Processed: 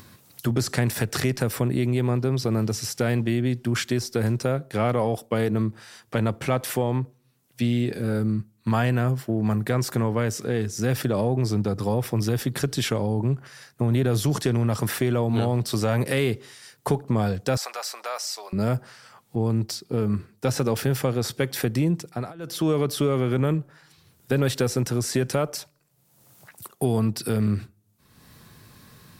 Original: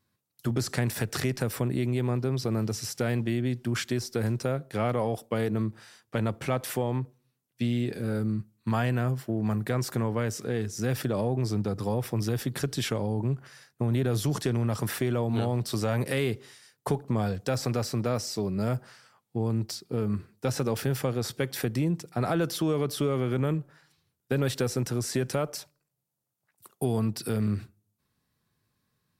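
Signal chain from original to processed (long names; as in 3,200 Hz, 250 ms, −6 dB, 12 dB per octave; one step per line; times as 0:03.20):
0:17.57–0:18.53: high-pass filter 710 Hz 24 dB per octave
0:22.05–0:22.66: duck −23 dB, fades 0.28 s
upward compression, threshold −36 dBFS
level +4.5 dB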